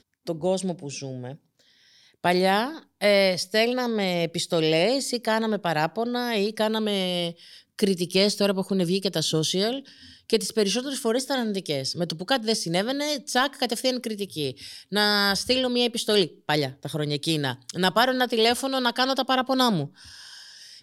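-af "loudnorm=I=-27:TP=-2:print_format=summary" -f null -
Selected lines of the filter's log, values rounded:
Input Integrated:    -24.1 LUFS
Input True Peak:      -8.0 dBTP
Input LRA:             2.7 LU
Input Threshold:     -34.7 LUFS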